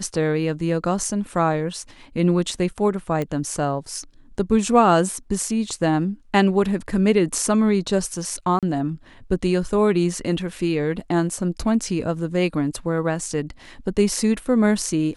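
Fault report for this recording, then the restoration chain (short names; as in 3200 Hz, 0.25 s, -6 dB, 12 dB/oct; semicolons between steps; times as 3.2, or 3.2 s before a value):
3.22 pop -14 dBFS
8.59–8.63 gap 37 ms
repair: de-click; interpolate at 8.59, 37 ms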